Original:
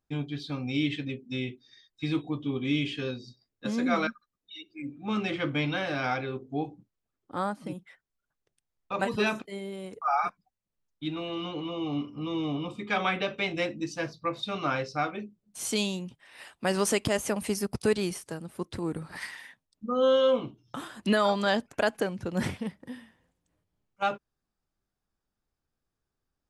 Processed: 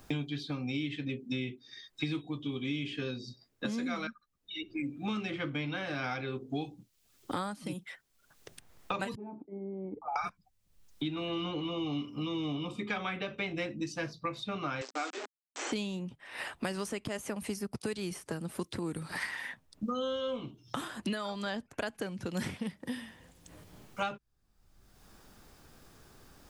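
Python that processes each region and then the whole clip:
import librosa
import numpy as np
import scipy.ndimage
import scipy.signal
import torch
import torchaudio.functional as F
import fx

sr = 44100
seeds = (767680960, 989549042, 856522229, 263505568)

y = fx.chain(x, sr, fx.formant_cascade(vowel='u'),
    fx.dynamic_eq(hz=310.0, q=1.1, threshold_db=-49.0, ratio=4.0, max_db=-4), at=(9.15, 10.16))
y = fx.chain(y, sr, fx.quant_dither(seeds[0], bits=6, dither='none'),
    fx.brickwall_bandpass(low_hz=250.0, high_hz=8200.0), at=(14.81, 15.72))
y = fx.rider(y, sr, range_db=4, speed_s=0.5)
y = fx.dynamic_eq(y, sr, hz=640.0, q=0.8, threshold_db=-37.0, ratio=4.0, max_db=-4)
y = fx.band_squash(y, sr, depth_pct=100)
y = y * librosa.db_to_amplitude(-5.0)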